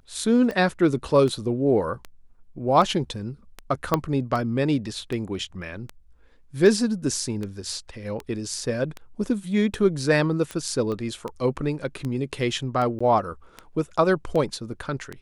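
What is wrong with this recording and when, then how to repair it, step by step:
tick 78 rpm -18 dBFS
3.94 pop -7 dBFS
10.92 pop -21 dBFS
12.99–13.01 gap 15 ms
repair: de-click; interpolate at 12.99, 15 ms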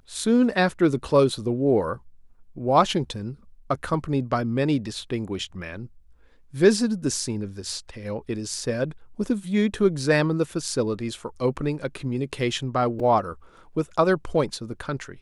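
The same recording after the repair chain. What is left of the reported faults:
3.94 pop
10.92 pop

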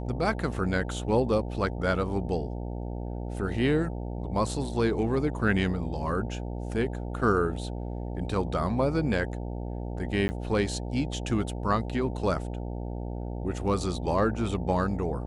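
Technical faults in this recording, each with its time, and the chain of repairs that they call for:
buzz 60 Hz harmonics 15 -34 dBFS
10.28–10.29 gap 10 ms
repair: de-hum 60 Hz, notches 15; interpolate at 10.28, 10 ms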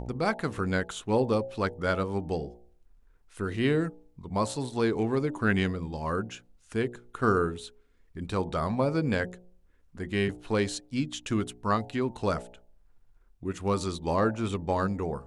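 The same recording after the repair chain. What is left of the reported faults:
none

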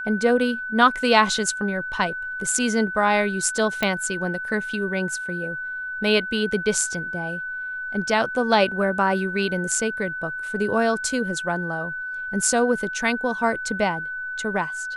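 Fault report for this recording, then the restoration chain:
tone 1500 Hz -28 dBFS
3.83 pop -9 dBFS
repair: de-click; notch 1500 Hz, Q 30

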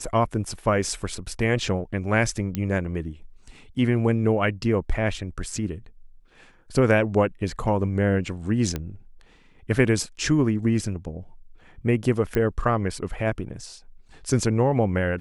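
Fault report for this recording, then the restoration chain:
2.55 pop -13 dBFS
8.76 pop -14 dBFS
12.35 pop -14 dBFS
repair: de-click

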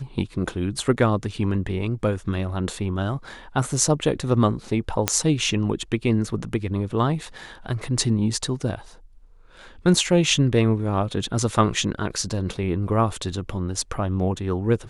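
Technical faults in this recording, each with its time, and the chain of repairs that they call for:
5.08 pop -1 dBFS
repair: de-click

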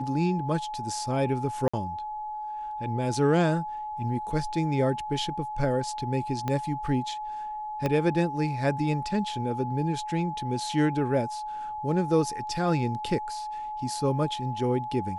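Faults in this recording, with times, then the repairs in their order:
tone 850 Hz -32 dBFS
1.68–1.74 gap 55 ms
6.48 pop -16 dBFS
7.86 pop -14 dBFS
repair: de-click; notch 850 Hz, Q 30; interpolate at 1.68, 55 ms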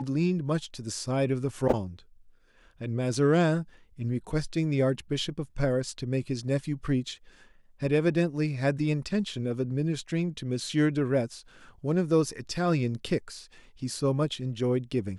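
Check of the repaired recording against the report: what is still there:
6.48 pop
7.86 pop

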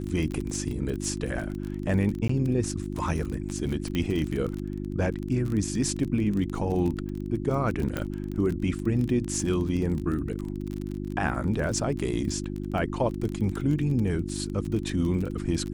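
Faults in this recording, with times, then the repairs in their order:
crackle 26/s -30 dBFS
hum 50 Hz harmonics 7 -33 dBFS
2.28–2.29 gap 14 ms
3.95 pop -16 dBFS
7.97 pop -15 dBFS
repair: de-click; de-hum 50 Hz, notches 7; interpolate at 2.28, 14 ms

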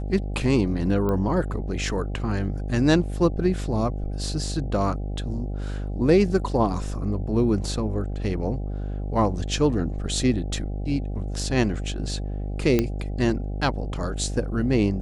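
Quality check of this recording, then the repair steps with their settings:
buzz 50 Hz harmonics 16 -29 dBFS
1.09 pop -16 dBFS
12.79 pop -8 dBFS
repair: de-click; de-hum 50 Hz, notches 16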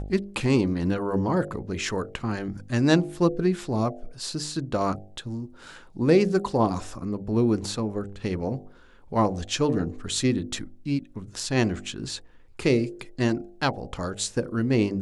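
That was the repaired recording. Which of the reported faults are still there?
none

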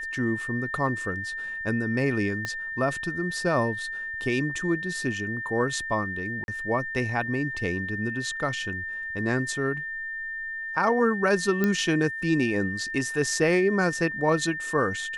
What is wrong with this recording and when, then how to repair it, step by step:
tone 1800 Hz -31 dBFS
2.45 pop -16 dBFS
6.44–6.48 gap 41 ms
11.64 pop -12 dBFS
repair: de-click; notch 1800 Hz, Q 30; interpolate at 6.44, 41 ms

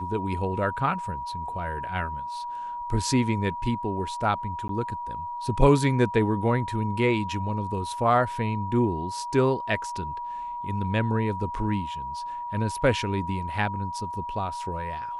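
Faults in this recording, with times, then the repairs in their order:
tone 960 Hz -31 dBFS
4.68–4.69 gap 13 ms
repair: notch 960 Hz, Q 30; interpolate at 4.68, 13 ms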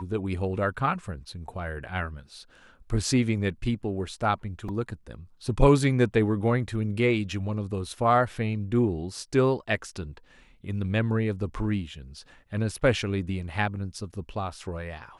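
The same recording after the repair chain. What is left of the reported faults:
none

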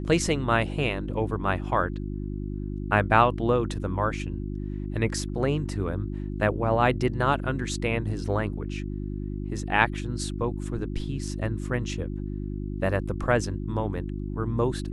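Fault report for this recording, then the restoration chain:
hum 50 Hz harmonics 7 -32 dBFS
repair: de-hum 50 Hz, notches 7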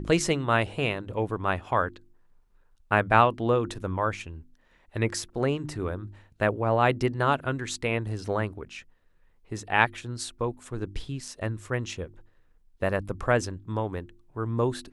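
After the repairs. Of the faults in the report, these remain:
none

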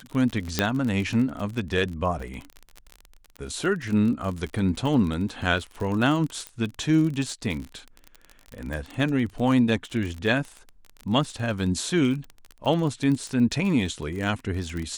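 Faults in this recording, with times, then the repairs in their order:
crackle 30/s -29 dBFS
0.59 pop -5 dBFS
6.47 pop -18 dBFS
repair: de-click

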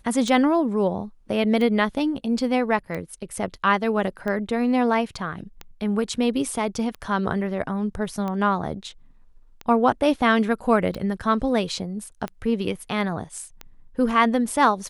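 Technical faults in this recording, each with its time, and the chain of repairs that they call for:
tick 45 rpm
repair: de-click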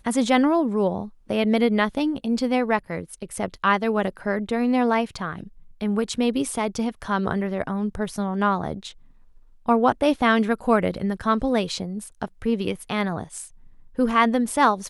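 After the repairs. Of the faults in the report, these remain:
none

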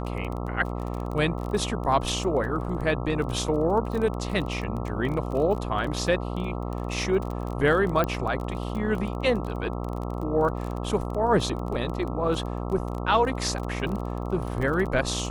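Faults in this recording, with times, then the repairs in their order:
buzz 60 Hz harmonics 22 -31 dBFS
crackle 23/s -31 dBFS
8.04 pop -13 dBFS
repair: de-click; de-hum 60 Hz, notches 22

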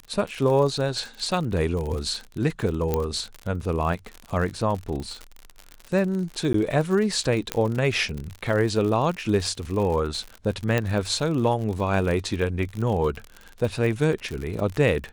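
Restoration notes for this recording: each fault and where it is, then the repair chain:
crackle 58/s -29 dBFS
2.94 pop -10 dBFS
6.53–6.54 gap 13 ms
7.52 pop -8 dBFS
10.78 pop -10 dBFS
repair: de-click; interpolate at 6.53, 13 ms

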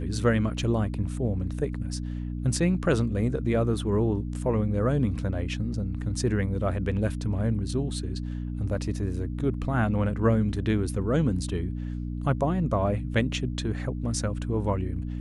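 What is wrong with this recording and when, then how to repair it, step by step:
hum 60 Hz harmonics 5 -32 dBFS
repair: de-hum 60 Hz, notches 5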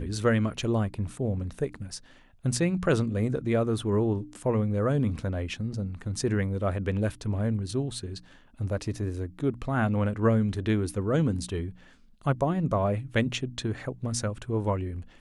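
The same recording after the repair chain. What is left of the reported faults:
none

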